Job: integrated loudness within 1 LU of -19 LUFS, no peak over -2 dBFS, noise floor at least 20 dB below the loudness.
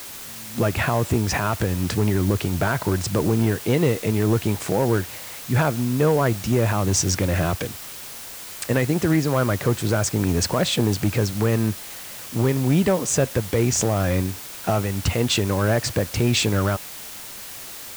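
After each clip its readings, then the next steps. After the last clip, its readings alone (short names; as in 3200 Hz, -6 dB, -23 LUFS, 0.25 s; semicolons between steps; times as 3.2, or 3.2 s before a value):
clipped 1.0%; flat tops at -12.0 dBFS; noise floor -37 dBFS; noise floor target -42 dBFS; loudness -22.0 LUFS; peak -12.0 dBFS; loudness target -19.0 LUFS
-> clip repair -12 dBFS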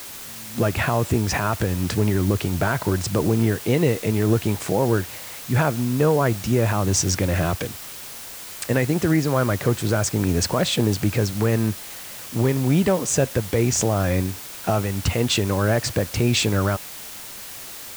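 clipped 0.0%; noise floor -37 dBFS; noise floor target -42 dBFS
-> denoiser 6 dB, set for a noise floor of -37 dBFS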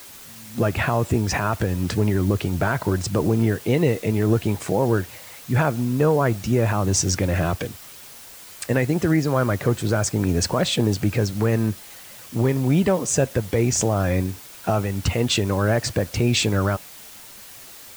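noise floor -42 dBFS; loudness -22.0 LUFS; peak -7.0 dBFS; loudness target -19.0 LUFS
-> gain +3 dB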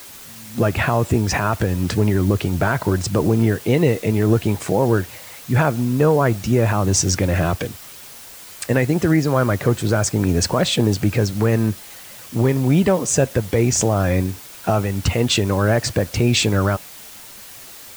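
loudness -19.0 LUFS; peak -4.0 dBFS; noise floor -39 dBFS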